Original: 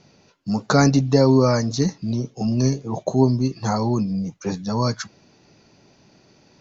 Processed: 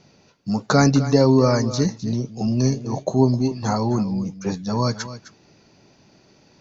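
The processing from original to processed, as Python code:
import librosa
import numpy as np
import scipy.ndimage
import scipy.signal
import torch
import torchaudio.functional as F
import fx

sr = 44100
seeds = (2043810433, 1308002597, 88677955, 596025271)

y = x + 10.0 ** (-14.0 / 20.0) * np.pad(x, (int(258 * sr / 1000.0), 0))[:len(x)]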